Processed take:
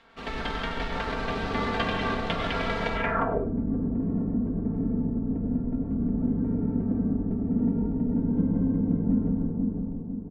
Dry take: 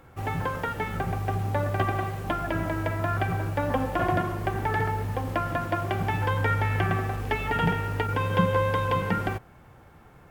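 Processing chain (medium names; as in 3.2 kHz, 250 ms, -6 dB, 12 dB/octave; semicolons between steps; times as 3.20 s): spectral peaks clipped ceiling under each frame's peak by 19 dB; reverberation RT60 1.5 s, pre-delay 88 ms, DRR 0.5 dB; in parallel at -5 dB: Schmitt trigger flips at -20.5 dBFS; on the sum: comb 4.4 ms, depth 75%; on a send: feedback echo behind a low-pass 503 ms, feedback 45%, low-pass 970 Hz, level -3 dB; on the sum: low-pass sweep 4 kHz -> 250 Hz, 2.94–3.54 s; trim -8.5 dB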